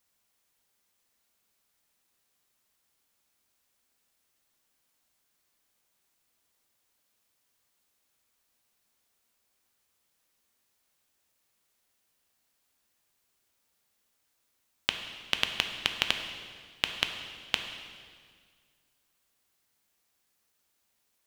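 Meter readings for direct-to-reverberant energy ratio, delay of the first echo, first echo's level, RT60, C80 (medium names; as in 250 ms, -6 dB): 5.0 dB, no echo, no echo, 1.8 s, 8.0 dB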